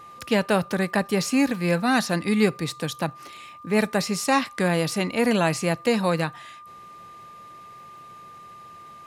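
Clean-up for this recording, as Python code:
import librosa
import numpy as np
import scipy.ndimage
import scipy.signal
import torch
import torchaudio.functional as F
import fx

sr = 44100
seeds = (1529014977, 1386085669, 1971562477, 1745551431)

y = fx.fix_declick_ar(x, sr, threshold=6.5)
y = fx.notch(y, sr, hz=1200.0, q=30.0)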